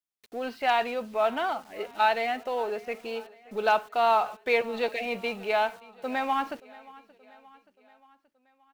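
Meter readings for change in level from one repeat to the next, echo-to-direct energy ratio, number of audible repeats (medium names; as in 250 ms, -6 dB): -5.0 dB, -20.5 dB, 3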